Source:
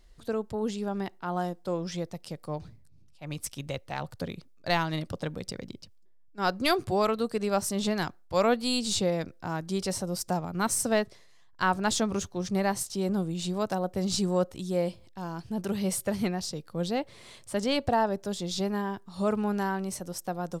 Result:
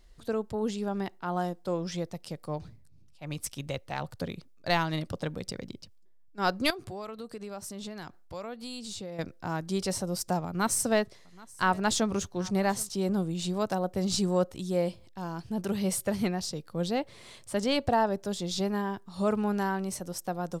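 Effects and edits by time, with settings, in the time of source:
6.70–9.19 s: compression 3:1, threshold -40 dBFS
10.47–12.89 s: delay 779 ms -23 dB

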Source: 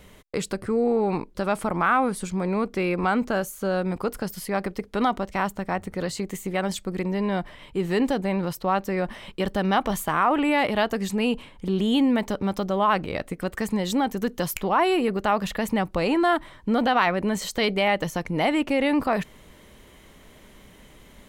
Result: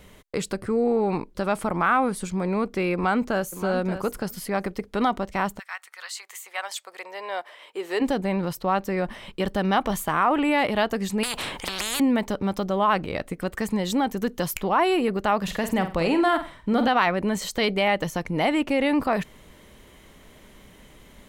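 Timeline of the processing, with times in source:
2.94–3.53 s: echo throw 580 ms, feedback 10%, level -11 dB
5.58–8.00 s: high-pass 1.4 kHz -> 360 Hz 24 dB/octave
11.23–12.00 s: spectrum-flattening compressor 10:1
15.43–16.88 s: flutter echo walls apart 8.2 m, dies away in 0.32 s

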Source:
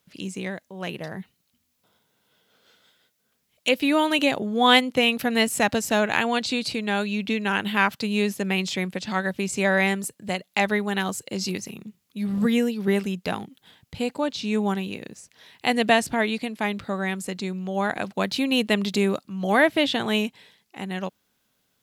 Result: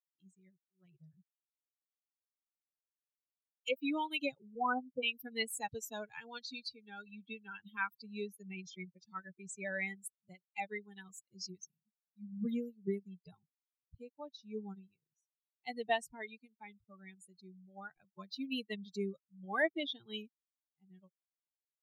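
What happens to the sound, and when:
0.50–0.78 s: time-frequency box 400–2700 Hz -8 dB
4.55–5.03 s: Chebyshev low-pass 1.6 kHz, order 10
8.52–9.03 s: Bessel low-pass 7.5 kHz
whole clip: expander on every frequency bin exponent 3; bass shelf 360 Hz -3 dB; trim -8.5 dB

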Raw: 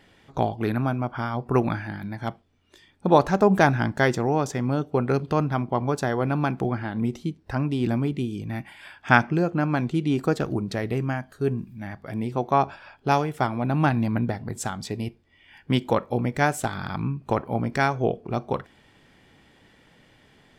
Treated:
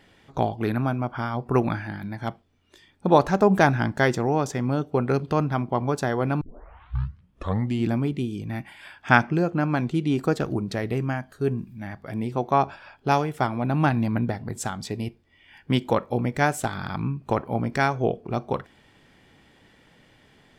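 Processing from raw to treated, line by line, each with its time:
6.41 s: tape start 1.50 s

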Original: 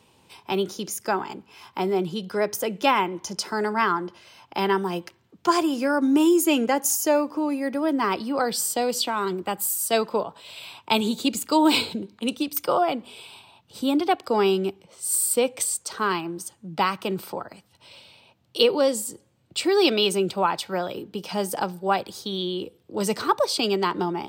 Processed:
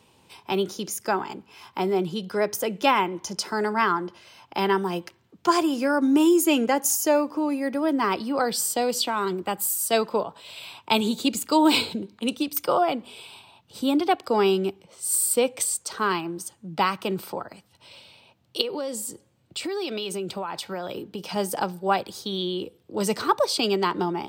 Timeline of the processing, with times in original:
18.61–21.36 s: compression, threshold -27 dBFS

